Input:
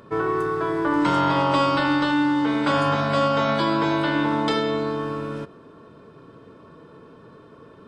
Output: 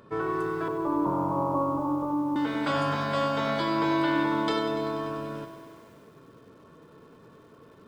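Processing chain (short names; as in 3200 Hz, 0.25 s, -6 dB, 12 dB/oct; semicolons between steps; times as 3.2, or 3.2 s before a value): 0.68–2.36 steep low-pass 1200 Hz 96 dB/oct; lo-fi delay 97 ms, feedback 80%, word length 8-bit, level -11 dB; gain -6 dB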